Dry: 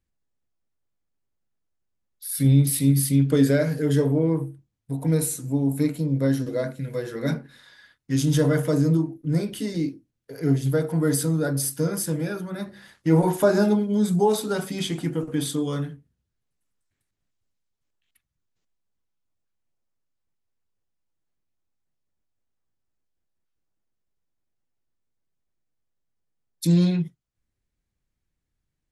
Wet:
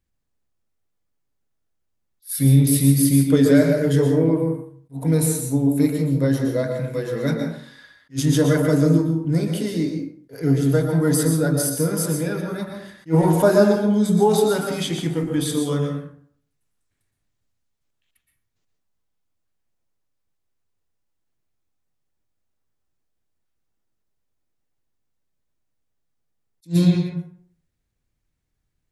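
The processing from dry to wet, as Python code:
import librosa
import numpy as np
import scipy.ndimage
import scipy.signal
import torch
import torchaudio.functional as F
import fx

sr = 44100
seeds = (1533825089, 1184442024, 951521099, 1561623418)

y = fx.rev_plate(x, sr, seeds[0], rt60_s=0.56, hf_ratio=0.6, predelay_ms=105, drr_db=3.5)
y = fx.attack_slew(y, sr, db_per_s=370.0)
y = F.gain(torch.from_numpy(y), 2.5).numpy()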